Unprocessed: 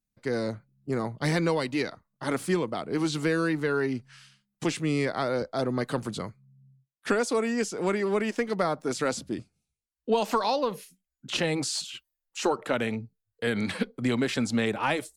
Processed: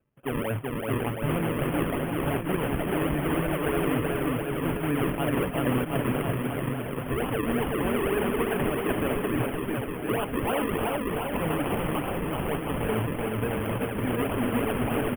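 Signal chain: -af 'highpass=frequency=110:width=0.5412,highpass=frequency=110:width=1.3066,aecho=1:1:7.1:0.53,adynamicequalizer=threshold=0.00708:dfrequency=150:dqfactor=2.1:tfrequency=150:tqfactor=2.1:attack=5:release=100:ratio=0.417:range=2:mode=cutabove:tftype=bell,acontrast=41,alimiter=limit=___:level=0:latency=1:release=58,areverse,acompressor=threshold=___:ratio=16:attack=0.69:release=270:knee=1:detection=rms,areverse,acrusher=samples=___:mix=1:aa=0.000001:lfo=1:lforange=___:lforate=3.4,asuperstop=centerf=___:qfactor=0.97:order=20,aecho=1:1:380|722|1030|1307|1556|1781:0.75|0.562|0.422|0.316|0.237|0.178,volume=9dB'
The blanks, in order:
-14.5dB, -32dB, 41, 41, 5500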